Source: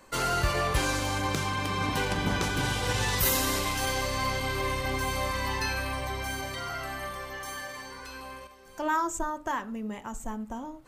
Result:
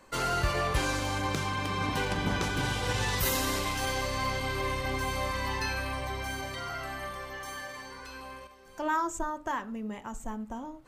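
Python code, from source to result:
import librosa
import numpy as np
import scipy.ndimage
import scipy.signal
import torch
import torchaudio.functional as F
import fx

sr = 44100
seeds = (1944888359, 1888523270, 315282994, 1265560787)

y = fx.high_shelf(x, sr, hz=7600.0, db=-5.0)
y = F.gain(torch.from_numpy(y), -1.5).numpy()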